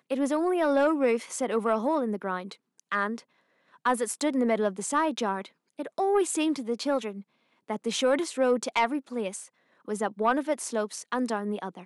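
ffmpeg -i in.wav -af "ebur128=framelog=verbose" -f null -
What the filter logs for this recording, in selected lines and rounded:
Integrated loudness:
  I:         -27.9 LUFS
  Threshold: -38.5 LUFS
Loudness range:
  LRA:         2.0 LU
  Threshold: -48.8 LUFS
  LRA low:   -29.6 LUFS
  LRA high:  -27.6 LUFS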